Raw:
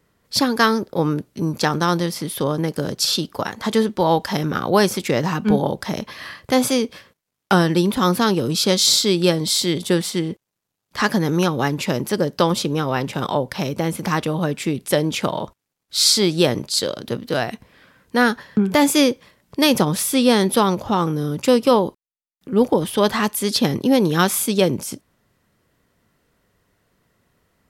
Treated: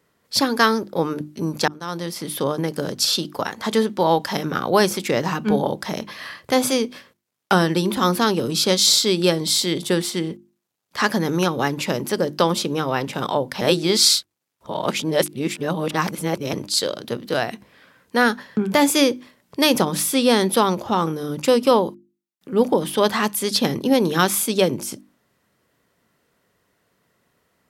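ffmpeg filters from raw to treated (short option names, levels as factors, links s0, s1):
-filter_complex "[0:a]asplit=4[s0][s1][s2][s3];[s0]atrim=end=1.68,asetpts=PTS-STARTPTS,afade=t=out:st=1.676:d=0.004:c=hsin[s4];[s1]atrim=start=1.68:end=13.612,asetpts=PTS-STARTPTS,afade=t=in:d=0.61[s5];[s2]atrim=start=13.608:end=16.532,asetpts=PTS-STARTPTS,areverse[s6];[s3]atrim=start=16.528[s7];[s4][s5]concat=n=2:v=0:a=1[s8];[s8][s6]acrossfade=d=0.004:c1=hsin:c2=hsin[s9];[s9][s7]acrossfade=d=0.004:c1=hsin:c2=hsin,highpass=f=160:p=1,bandreject=f=50:t=h:w=6,bandreject=f=100:t=h:w=6,bandreject=f=150:t=h:w=6,bandreject=f=200:t=h:w=6,bandreject=f=250:t=h:w=6,bandreject=f=300:t=h:w=6,bandreject=f=350:t=h:w=6"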